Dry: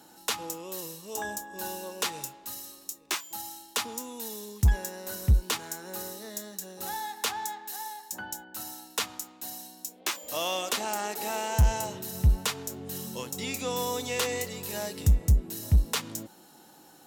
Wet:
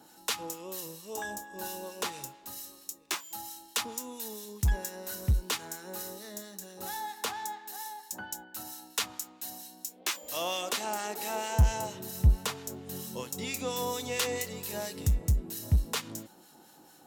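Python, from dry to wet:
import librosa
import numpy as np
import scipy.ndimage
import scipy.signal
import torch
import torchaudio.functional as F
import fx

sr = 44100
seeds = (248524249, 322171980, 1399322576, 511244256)

y = fx.harmonic_tremolo(x, sr, hz=4.4, depth_pct=50, crossover_hz=1300.0)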